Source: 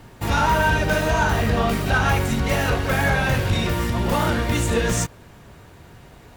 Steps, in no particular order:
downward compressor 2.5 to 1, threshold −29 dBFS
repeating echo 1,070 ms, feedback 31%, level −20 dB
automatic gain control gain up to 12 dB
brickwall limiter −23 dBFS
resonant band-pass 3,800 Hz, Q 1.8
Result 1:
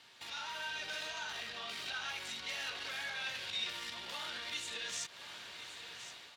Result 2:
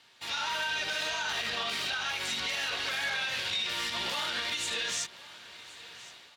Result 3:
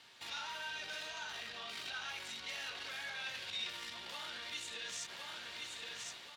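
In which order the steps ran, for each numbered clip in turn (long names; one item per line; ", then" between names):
brickwall limiter, then automatic gain control, then repeating echo, then downward compressor, then resonant band-pass
automatic gain control, then resonant band-pass, then downward compressor, then brickwall limiter, then repeating echo
automatic gain control, then repeating echo, then brickwall limiter, then resonant band-pass, then downward compressor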